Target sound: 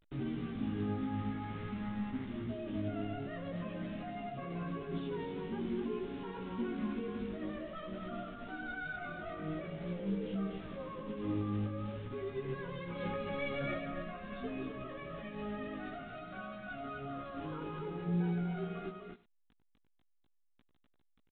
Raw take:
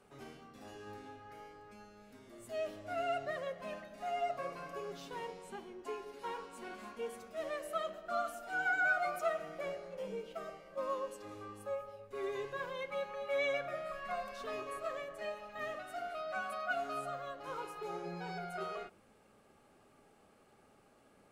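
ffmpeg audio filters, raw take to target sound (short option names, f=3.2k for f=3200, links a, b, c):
-filter_complex "[0:a]asoftclip=type=tanh:threshold=-32dB,acrusher=bits=8:mix=0:aa=0.000001,asettb=1/sr,asplit=3[a][b][c];[a]atrim=end=0.694[d];[b]atrim=start=0.69:end=2.26,asetpts=PTS-STARTPTS,afade=t=in:d=0.004:c=qsin,afade=t=out:st=1.566:d=0.004:c=qsin,equalizer=f=100:t=o:w=0.33:g=4,equalizer=f=200:t=o:w=0.33:g=6,equalizer=f=800:t=o:w=0.33:g=5,equalizer=f=1.25k:t=o:w=0.33:g=7,equalizer=f=2k:t=o:w=0.33:g=5[e];[c]atrim=start=2.256[f];[d][e]acrossfade=d=0.004:c1=hsin:c2=qsin[g];[g][f]acrossfade=d=0.004:c1=qsin:c2=hsin,alimiter=level_in=18.5dB:limit=-24dB:level=0:latency=1:release=35,volume=-18.5dB,lowshelf=f=390:t=q:w=1.5:g=13.5,asplit=2[h][i];[i]aecho=0:1:96:0.0944[j];[h][j]amix=inputs=2:normalize=0,asettb=1/sr,asplit=3[k][l][m];[k]atrim=end=12.954[n];[l]atrim=start=12.95:end=13.78,asetpts=PTS-STARTPTS,afade=t=in:d=0.004:c=qsin,afade=t=out:st=0.826:d=0.004:c=qsin,acontrast=63[o];[m]atrim=start=13.776[p];[n][o]acrossfade=d=0.004:c1=hsin:c2=qsin[q];[q][p]acrossfade=d=0.004:c1=qsin:c2=hsin,asplit=2[r][s];[s]aecho=0:1:249:0.562[t];[r][t]amix=inputs=2:normalize=0,flanger=delay=15.5:depth=3.9:speed=0.48,volume=6dB" -ar 8000 -c:a pcm_alaw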